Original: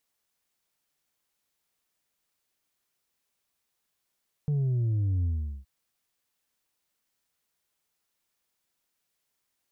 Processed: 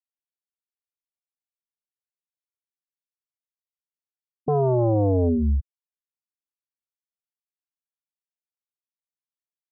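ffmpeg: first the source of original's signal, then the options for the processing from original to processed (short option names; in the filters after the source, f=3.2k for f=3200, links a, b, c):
-f lavfi -i "aevalsrc='0.0631*clip((1.17-t)/0.41,0,1)*tanh(1.41*sin(2*PI*150*1.17/log(65/150)*(exp(log(65/150)*t/1.17)-1)))/tanh(1.41)':d=1.17:s=44100"
-af "afftfilt=real='re*gte(hypot(re,im),0.0631)':imag='im*gte(hypot(re,im),0.0631)':win_size=1024:overlap=0.75,lowshelf=f=170:g=7,aeval=exprs='0.133*sin(PI/2*3.55*val(0)/0.133)':c=same"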